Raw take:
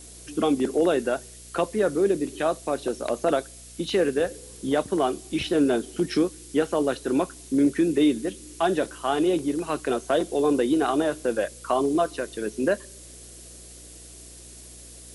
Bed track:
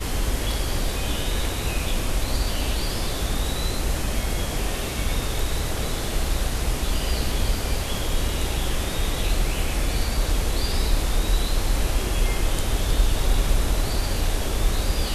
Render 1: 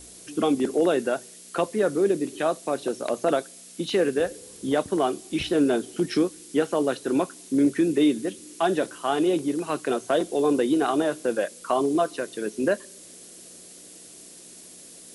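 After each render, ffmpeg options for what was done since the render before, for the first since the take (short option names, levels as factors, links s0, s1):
-af "bandreject=f=60:t=h:w=4,bandreject=f=120:t=h:w=4"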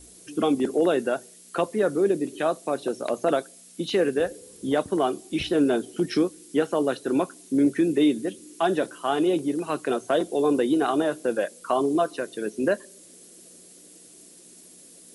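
-af "afftdn=nr=6:nf=-46"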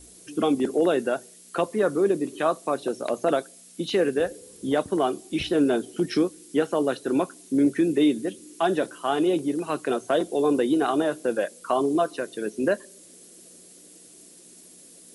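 -filter_complex "[0:a]asettb=1/sr,asplit=3[s0][s1][s2];[s0]atrim=end=1.704[s3];[s1]atrim=start=1.7:end=2.75,asetpts=PTS-STARTPTS,afade=t=in:d=0.004:c=qsin,afade=t=out:st=1.046:d=0.004:c=qsin,equalizer=f=1100:w=3.4:g=6.5[s4];[s2]atrim=start=2.746[s5];[s3][s4]acrossfade=d=0.004:c1=hsin:c2=qsin[s6];[s6][s5]acrossfade=d=0.004:c1=qsin:c2=hsin"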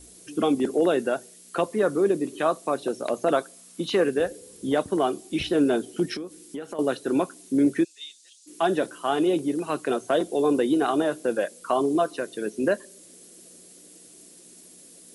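-filter_complex "[0:a]asettb=1/sr,asplit=3[s0][s1][s2];[s0]atrim=end=3.344[s3];[s1]atrim=start=3.34:end=4.04,asetpts=PTS-STARTPTS,afade=t=in:d=0.004:c=qsin,afade=t=out:st=0.696:d=0.004:c=qsin,equalizer=f=1100:t=o:w=0.64:g=9[s4];[s2]atrim=start=4.036[s5];[s3][s4]acrossfade=d=0.004:c1=hsin:c2=qsin[s6];[s6][s5]acrossfade=d=0.004:c1=qsin:c2=hsin,asettb=1/sr,asplit=3[s7][s8][s9];[s7]atrim=end=6.154[s10];[s8]atrim=start=6.15:end=6.79,asetpts=PTS-STARTPTS,afade=t=in:d=0.004:c=qsin,afade=t=out:st=0.636:d=0.004:c=qsin,acompressor=threshold=0.0282:ratio=6:attack=3.2:release=140:knee=1:detection=peak[s11];[s9]atrim=start=6.786[s12];[s10][s11]acrossfade=d=0.004:c1=hsin:c2=qsin[s13];[s13][s12]acrossfade=d=0.004:c1=qsin:c2=hsin,asplit=3[s14][s15][s16];[s14]afade=t=out:st=7.83:d=0.02[s17];[s15]asuperpass=centerf=5400:order=4:qfactor=1.3,afade=t=in:st=7.83:d=0.02,afade=t=out:st=8.46:d=0.02[s18];[s16]afade=t=in:st=8.46:d=0.02[s19];[s17][s18][s19]amix=inputs=3:normalize=0"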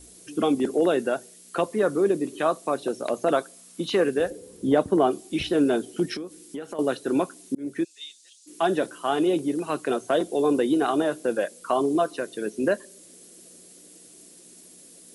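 -filter_complex "[0:a]asettb=1/sr,asplit=3[s0][s1][s2];[s0]atrim=end=4.304[s3];[s1]atrim=start=4.3:end=5.11,asetpts=PTS-STARTPTS,afade=t=in:d=0.004:c=qsin,afade=t=out:st=0.806:d=0.004:c=qsin,tiltshelf=f=1400:g=4.5[s4];[s2]atrim=start=5.106[s5];[s3][s4]acrossfade=d=0.004:c1=hsin:c2=qsin[s6];[s6][s5]acrossfade=d=0.004:c1=qsin:c2=hsin,asplit=2[s7][s8];[s7]atrim=end=7.55,asetpts=PTS-STARTPTS,afade=t=out:st=7.546:d=0.004:c=hsin[s9];[s8]atrim=start=7.55,asetpts=PTS-STARTPTS,afade=t=in:d=0.41[s10];[s9][s10]concat=n=2:v=0:a=1"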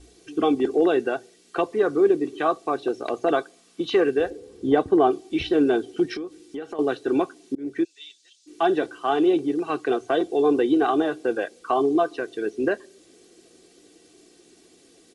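-af "lowpass=4600,aecho=1:1:2.6:0.58"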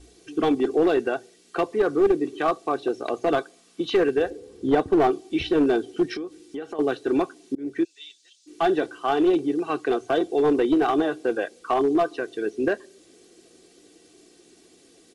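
-af "aeval=exprs='clip(val(0),-1,0.168)':c=same"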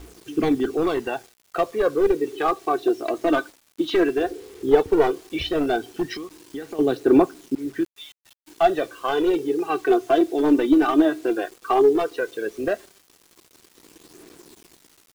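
-af "aphaser=in_gain=1:out_gain=1:delay=3.5:decay=0.59:speed=0.14:type=triangular,acrusher=bits=7:mix=0:aa=0.000001"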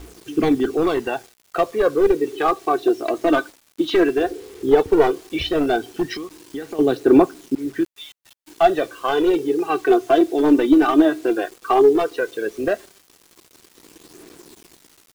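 -af "volume=1.41,alimiter=limit=0.794:level=0:latency=1"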